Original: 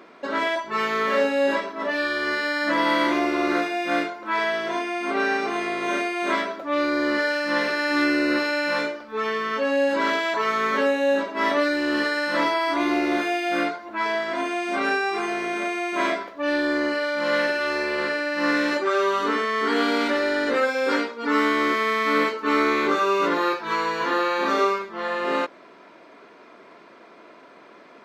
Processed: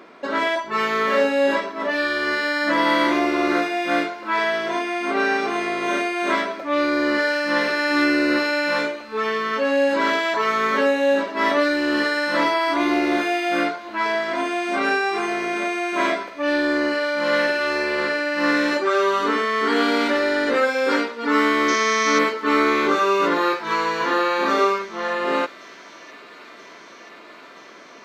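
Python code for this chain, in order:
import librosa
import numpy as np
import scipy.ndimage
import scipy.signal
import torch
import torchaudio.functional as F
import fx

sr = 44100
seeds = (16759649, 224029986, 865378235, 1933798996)

y = fx.lowpass_res(x, sr, hz=6000.0, q=13.0, at=(21.68, 22.19))
y = fx.echo_wet_highpass(y, sr, ms=981, feedback_pct=81, hz=2000.0, wet_db=-19.5)
y = y * 10.0 ** (2.5 / 20.0)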